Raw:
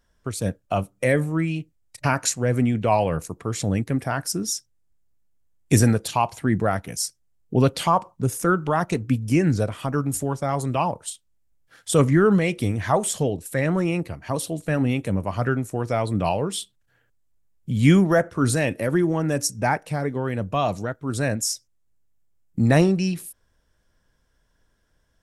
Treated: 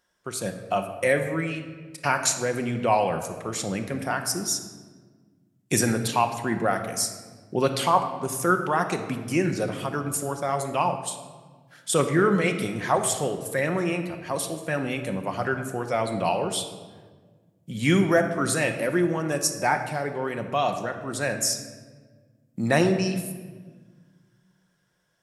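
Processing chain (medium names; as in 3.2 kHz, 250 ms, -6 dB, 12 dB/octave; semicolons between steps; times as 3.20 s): high-pass 460 Hz 6 dB/octave; simulated room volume 1500 m³, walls mixed, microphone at 0.95 m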